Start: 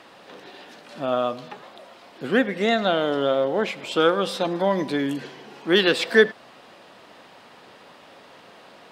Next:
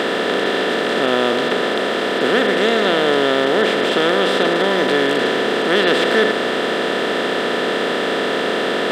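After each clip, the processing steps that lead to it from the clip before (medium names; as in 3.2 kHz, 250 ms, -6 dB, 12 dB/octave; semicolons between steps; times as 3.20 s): spectral levelling over time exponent 0.2; trim -4 dB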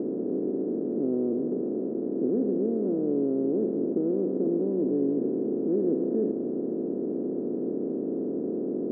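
four-pole ladder low-pass 380 Hz, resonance 45%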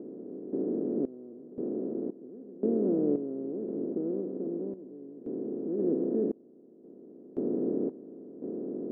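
random-step tremolo 1.9 Hz, depth 95%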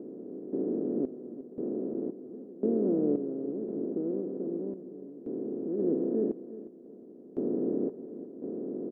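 feedback delay 358 ms, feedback 32%, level -14.5 dB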